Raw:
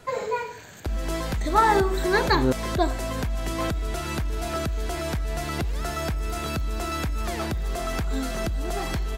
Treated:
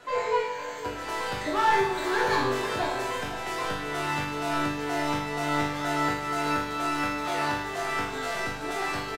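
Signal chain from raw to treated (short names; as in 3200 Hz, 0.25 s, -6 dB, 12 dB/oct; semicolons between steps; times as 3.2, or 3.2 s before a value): overdrive pedal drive 23 dB, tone 2700 Hz, clips at -7 dBFS; resonator bank G2 major, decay 0.79 s; echo 0.511 s -10.5 dB; gain +8 dB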